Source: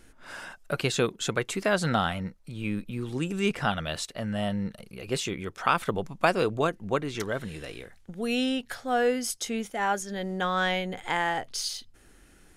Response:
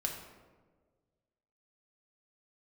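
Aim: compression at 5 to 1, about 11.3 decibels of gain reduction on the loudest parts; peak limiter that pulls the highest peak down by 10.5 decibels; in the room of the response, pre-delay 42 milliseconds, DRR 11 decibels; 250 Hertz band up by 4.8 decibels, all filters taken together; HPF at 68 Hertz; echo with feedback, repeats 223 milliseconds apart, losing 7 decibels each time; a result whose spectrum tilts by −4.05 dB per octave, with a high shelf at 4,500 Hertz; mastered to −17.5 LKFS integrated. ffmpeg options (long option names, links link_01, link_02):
-filter_complex "[0:a]highpass=68,equalizer=frequency=250:width_type=o:gain=6,highshelf=frequency=4500:gain=8.5,acompressor=threshold=-30dB:ratio=5,alimiter=limit=-24dB:level=0:latency=1,aecho=1:1:223|446|669|892|1115:0.447|0.201|0.0905|0.0407|0.0183,asplit=2[link_01][link_02];[1:a]atrim=start_sample=2205,adelay=42[link_03];[link_02][link_03]afir=irnorm=-1:irlink=0,volume=-13.5dB[link_04];[link_01][link_04]amix=inputs=2:normalize=0,volume=16.5dB"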